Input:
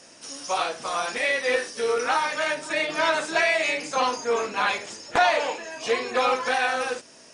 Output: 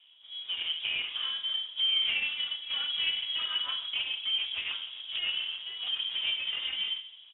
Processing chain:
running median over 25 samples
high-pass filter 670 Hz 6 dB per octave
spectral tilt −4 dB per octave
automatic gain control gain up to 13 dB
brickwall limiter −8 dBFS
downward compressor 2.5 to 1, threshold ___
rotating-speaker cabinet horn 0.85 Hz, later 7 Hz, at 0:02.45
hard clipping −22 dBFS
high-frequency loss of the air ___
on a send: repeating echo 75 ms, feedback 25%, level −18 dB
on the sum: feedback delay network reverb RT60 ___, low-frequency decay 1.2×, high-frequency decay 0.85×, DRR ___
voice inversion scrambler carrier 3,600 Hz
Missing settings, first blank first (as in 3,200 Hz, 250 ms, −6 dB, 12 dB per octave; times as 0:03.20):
−34 dBFS, 150 metres, 0.77 s, 7.5 dB